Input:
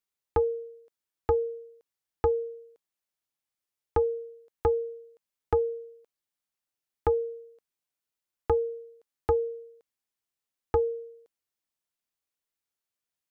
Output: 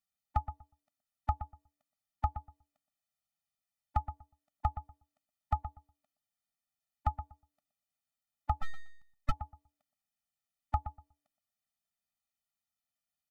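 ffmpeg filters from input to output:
ffmpeg -i in.wav -filter_complex "[0:a]asplit=2[link_01][link_02];[link_02]adelay=121,lowpass=frequency=1200:poles=1,volume=-10dB,asplit=2[link_03][link_04];[link_04]adelay=121,lowpass=frequency=1200:poles=1,volume=0.18,asplit=2[link_05][link_06];[link_06]adelay=121,lowpass=frequency=1200:poles=1,volume=0.18[link_07];[link_01][link_03][link_05][link_07]amix=inputs=4:normalize=0,asplit=3[link_08][link_09][link_10];[link_08]afade=type=out:start_time=8.61:duration=0.02[link_11];[link_09]aeval=exprs='abs(val(0))':channel_layout=same,afade=type=in:start_time=8.61:duration=0.02,afade=type=out:start_time=9.3:duration=0.02[link_12];[link_10]afade=type=in:start_time=9.3:duration=0.02[link_13];[link_11][link_12][link_13]amix=inputs=3:normalize=0,afftfilt=real='re*eq(mod(floor(b*sr/1024/290),2),0)':imag='im*eq(mod(floor(b*sr/1024/290),2),0)':win_size=1024:overlap=0.75" out.wav

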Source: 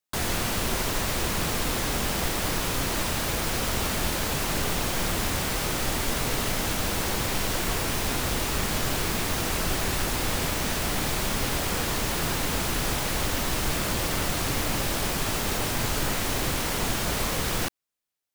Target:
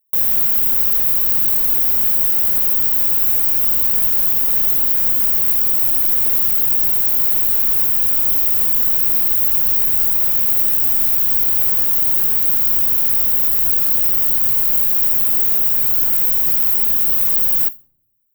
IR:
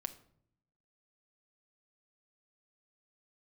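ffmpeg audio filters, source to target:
-filter_complex "[0:a]aexciter=amount=8.9:drive=2.9:freq=12000,asplit=2[link_01][link_02];[link_02]aemphasis=mode=production:type=50fm[link_03];[1:a]atrim=start_sample=2205,highshelf=frequency=11000:gain=3.5[link_04];[link_03][link_04]afir=irnorm=-1:irlink=0,volume=-9dB[link_05];[link_01][link_05]amix=inputs=2:normalize=0,volume=-9.5dB"

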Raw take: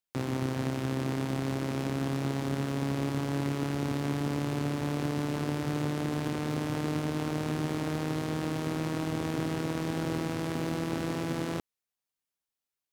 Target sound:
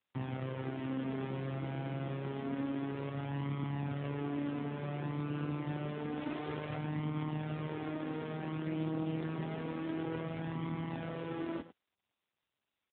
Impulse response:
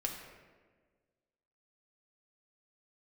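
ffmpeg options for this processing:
-filter_complex "[0:a]asplit=3[link_01][link_02][link_03];[link_01]afade=type=out:start_time=6.15:duration=0.02[link_04];[link_02]acrusher=bits=6:dc=4:mix=0:aa=0.000001,afade=type=in:start_time=6.15:duration=0.02,afade=type=out:start_time=6.76:duration=0.02[link_05];[link_03]afade=type=in:start_time=6.76:duration=0.02[link_06];[link_04][link_05][link_06]amix=inputs=3:normalize=0,aecho=1:1:105:0.188,flanger=delay=0.9:depth=5.2:regen=19:speed=0.28:shape=sinusoidal,volume=-2dB" -ar 8000 -c:a libopencore_amrnb -b:a 10200

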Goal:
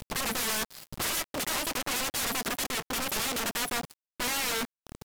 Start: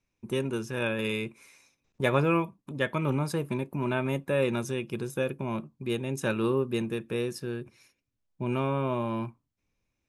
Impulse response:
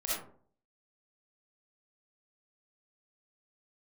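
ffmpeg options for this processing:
-af "lowshelf=frequency=110:width_type=q:width=3:gain=11.5,acompressor=mode=upward:threshold=-31dB:ratio=2.5,aresample=16000,aeval=exprs='(mod(31.6*val(0)+1,2)-1)/31.6':channel_layout=same,aresample=44100,acrusher=bits=6:mix=0:aa=0.000001,asetrate=88200,aresample=44100,volume=4.5dB"

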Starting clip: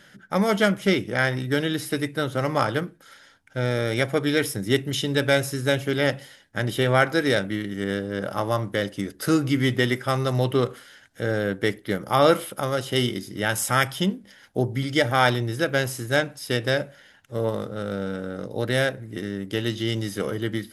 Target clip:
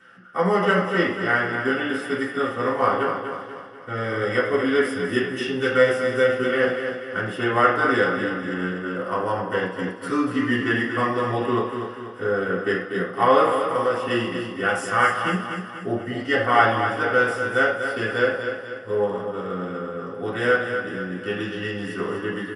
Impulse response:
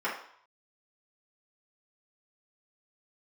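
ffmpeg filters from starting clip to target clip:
-filter_complex "[0:a]asetrate=40517,aresample=44100,aecho=1:1:243|486|729|972|1215|1458:0.422|0.202|0.0972|0.0466|0.0224|0.0107[link_01];[1:a]atrim=start_sample=2205[link_02];[link_01][link_02]afir=irnorm=-1:irlink=0,volume=-7.5dB"

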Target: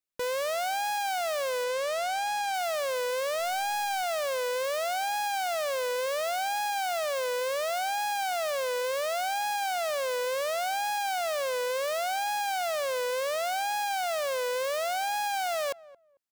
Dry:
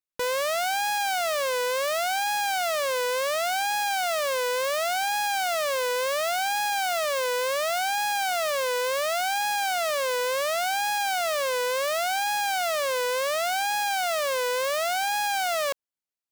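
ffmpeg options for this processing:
ffmpeg -i in.wav -filter_complex "[0:a]asettb=1/sr,asplit=3[link_01][link_02][link_03];[link_01]atrim=end=1.644[link_04];[link_02]atrim=start=1.64:end=2.54,asetpts=PTS-STARTPTS,afade=type=in:duration=0.004:curve=qsin,afade=type=out:start_time=0.896:duration=0.004:curve=qsin,lowpass=frequency=10000:width=0.5412,lowpass=frequency=10000:width=1.3066[link_05];[link_03]atrim=start=2.536[link_06];[link_04][link_05]acrossfade=duration=0.004:curve1=hsin:curve2=qsin[link_07];[link_07][link_06]acrossfade=duration=0.004:curve1=qsin:curve2=hsin,asettb=1/sr,asplit=3[link_08][link_09][link_10];[link_08]atrim=end=3.394[link_11];[link_09]atrim=start=3.39:end=4.02,asetpts=PTS-STARTPTS,afade=type=in:duration=0.004:curve=qsin,afade=type=out:start_time=0.626:duration=0.004:curve=qsin,highshelf=frequency=5200:gain=10[link_12];[link_10]atrim=start=4.016[link_13];[link_11][link_12]acrossfade=duration=0.004:curve1=hsin:curve2=qsin[link_14];[link_14][link_13]acrossfade=duration=0.004:curve1=qsin:curve2=hsin,asoftclip=type=tanh:threshold=-26.5dB,asplit=2[link_15][link_16];[link_16]adelay=223,lowpass=frequency=890:poles=1,volume=-18dB,asplit=2[link_17][link_18];[link_18]adelay=223,lowpass=frequency=890:poles=1,volume=0.23[link_19];[link_15][link_17][link_19]amix=inputs=3:normalize=0" out.wav

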